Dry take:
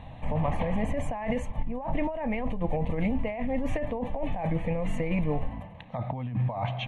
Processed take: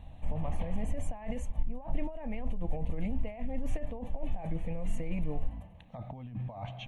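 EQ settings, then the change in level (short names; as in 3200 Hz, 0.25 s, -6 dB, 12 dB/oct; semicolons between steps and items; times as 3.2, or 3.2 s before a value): graphic EQ 125/250/500/1000/2000/4000 Hz -10/-6/-8/-11/-11/-7 dB; +1.0 dB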